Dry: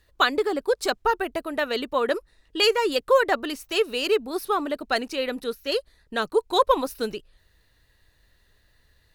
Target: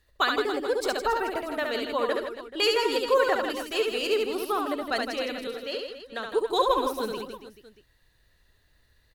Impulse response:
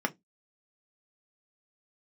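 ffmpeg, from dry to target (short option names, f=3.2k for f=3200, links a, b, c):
-filter_complex "[0:a]asettb=1/sr,asplit=3[a][b][c];[a]atrim=end=5.474[d];[b]atrim=start=5.47:end=6.26,asetpts=PTS-STARTPTS,afade=t=in:d=0.004:c=qsin,afade=t=out:st=0.786:d=0.004:c=qsin,acrossover=split=350|5900[e][f][g];[e]acompressor=threshold=-46dB:ratio=4[h];[f]acompressor=threshold=-26dB:ratio=4[i];[g]acompressor=threshold=-58dB:ratio=4[j];[h][i][j]amix=inputs=3:normalize=0[k];[c]atrim=start=6.256[l];[d][k]acrossfade=d=0.004:c1=hsin:c2=qsin[m];[m][l]acrossfade=d=0.004:c1=qsin:c2=hsin,aecho=1:1:70|161|279.3|433.1|633:0.631|0.398|0.251|0.158|0.1,volume=-4.5dB"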